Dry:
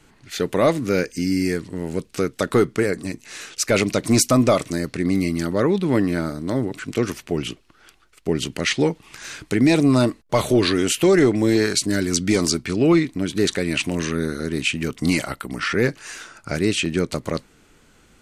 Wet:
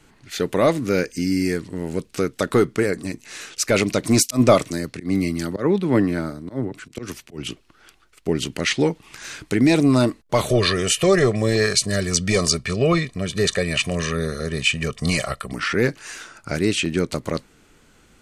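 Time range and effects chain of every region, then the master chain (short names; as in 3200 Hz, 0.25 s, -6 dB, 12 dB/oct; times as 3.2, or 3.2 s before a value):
4.23–7.48 auto swell 0.103 s + three-band expander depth 70%
10.49–15.53 LPF 11000 Hz 24 dB/oct + comb 1.7 ms, depth 82%
whole clip: dry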